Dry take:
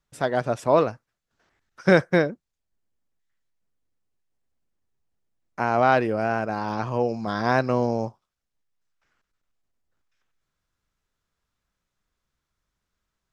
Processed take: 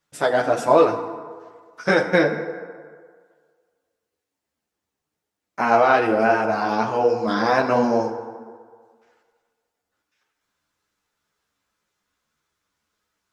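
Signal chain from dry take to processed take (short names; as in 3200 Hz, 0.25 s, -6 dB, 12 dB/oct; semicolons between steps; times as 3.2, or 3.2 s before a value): HPF 290 Hz 6 dB/oct; limiter -11 dBFS, peak gain reduction 6.5 dB; FDN reverb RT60 1.8 s, low-frequency decay 0.8×, high-frequency decay 0.5×, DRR 6 dB; ensemble effect; gain +9 dB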